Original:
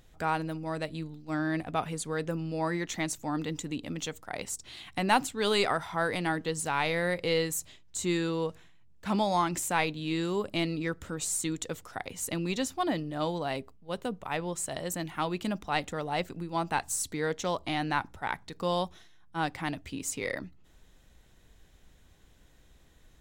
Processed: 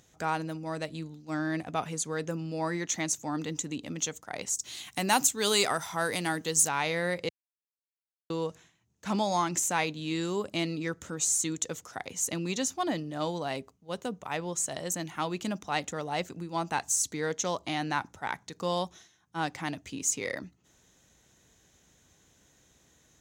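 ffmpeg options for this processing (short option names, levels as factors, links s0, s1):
-filter_complex "[0:a]asplit=3[s0][s1][s2];[s0]afade=t=out:st=4.55:d=0.02[s3];[s1]aemphasis=mode=production:type=50fm,afade=t=in:st=4.55:d=0.02,afade=t=out:st=6.67:d=0.02[s4];[s2]afade=t=in:st=6.67:d=0.02[s5];[s3][s4][s5]amix=inputs=3:normalize=0,asplit=3[s6][s7][s8];[s6]atrim=end=7.29,asetpts=PTS-STARTPTS,afade=t=out:st=7.286:d=0.004:c=hsin[s9];[s7]atrim=start=7.29:end=8.3,asetpts=PTS-STARTPTS,volume=0[s10];[s8]atrim=start=8.3,asetpts=PTS-STARTPTS,afade=t=in:d=0.004:c=hsin[s11];[s9][s10][s11]concat=n=3:v=0:a=1,highpass=99,equalizer=f=6400:t=o:w=0.42:g=12.5,acontrast=70,volume=0.422"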